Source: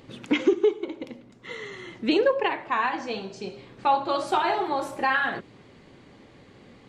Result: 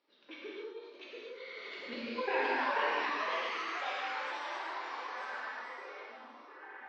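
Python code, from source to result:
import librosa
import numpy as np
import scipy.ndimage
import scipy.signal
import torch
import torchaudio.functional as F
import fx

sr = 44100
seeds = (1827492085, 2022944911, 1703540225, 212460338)

p1 = fx.doppler_pass(x, sr, speed_mps=24, closest_m=1.8, pass_at_s=2.06)
p2 = scipy.signal.sosfilt(scipy.signal.butter(4, 250.0, 'highpass', fs=sr, output='sos'), p1)
p3 = fx.low_shelf(p2, sr, hz=500.0, db=-9.0)
p4 = fx.over_compress(p3, sr, threshold_db=-38.0, ratio=-0.5)
p5 = scipy.signal.sosfilt(scipy.signal.cheby1(6, 3, 5800.0, 'lowpass', fs=sr, output='sos'), p4)
p6 = fx.rev_gated(p5, sr, seeds[0], gate_ms=300, shape='flat', drr_db=-6.5)
p7 = fx.cheby_harmonics(p6, sr, harmonics=(4,), levels_db=(-43,), full_scale_db=-19.0)
p8 = p7 + fx.echo_stepped(p7, sr, ms=701, hz=3000.0, octaves=-0.7, feedback_pct=70, wet_db=-5.0, dry=0)
y = fx.echo_pitch(p8, sr, ms=736, semitones=2, count=3, db_per_echo=-3.0)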